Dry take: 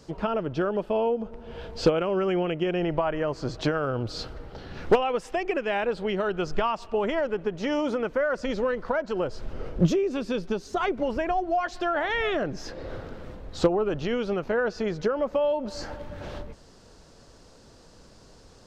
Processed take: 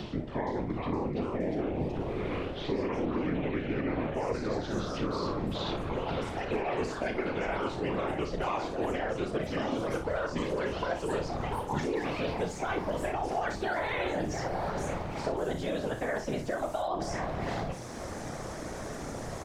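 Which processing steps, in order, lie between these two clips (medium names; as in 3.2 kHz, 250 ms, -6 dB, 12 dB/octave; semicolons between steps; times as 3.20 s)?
gliding tape speed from 65% -> 127%; vibrato 12 Hz 77 cents; reverse; compression, threshold -37 dBFS, peak gain reduction 21 dB; reverse; whisper effect; ever faster or slower copies 468 ms, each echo +3 st, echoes 3, each echo -6 dB; on a send: early reflections 33 ms -8.5 dB, 58 ms -10.5 dB; on the sum: three bands compressed up and down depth 70%; trim +5 dB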